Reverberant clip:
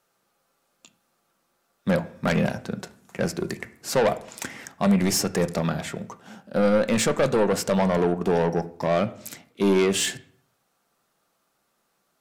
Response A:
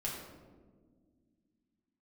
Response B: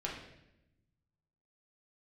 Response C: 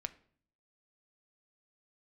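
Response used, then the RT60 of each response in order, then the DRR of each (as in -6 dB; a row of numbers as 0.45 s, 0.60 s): C; 1.7 s, 0.85 s, 0.55 s; -5.0 dB, -3.5 dB, 10.0 dB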